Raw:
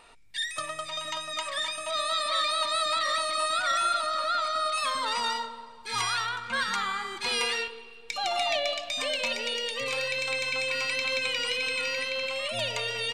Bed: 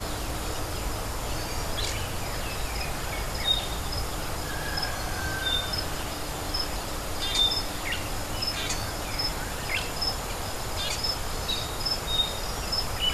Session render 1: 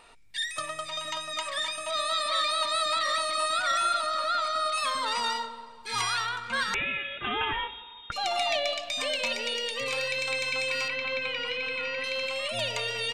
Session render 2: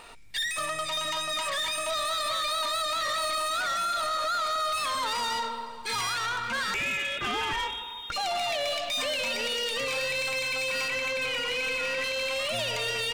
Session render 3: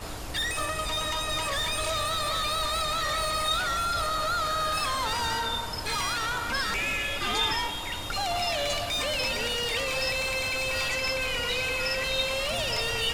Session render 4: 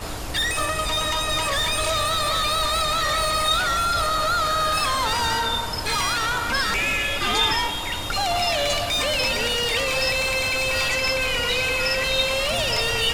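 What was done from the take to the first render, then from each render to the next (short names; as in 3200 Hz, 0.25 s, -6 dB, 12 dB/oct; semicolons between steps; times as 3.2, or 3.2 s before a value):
6.74–8.12 inverted band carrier 3700 Hz; 10.88–12.04 LPF 2800 Hz
limiter -24.5 dBFS, peak gain reduction 8 dB; sample leveller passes 2
add bed -5.5 dB
gain +6 dB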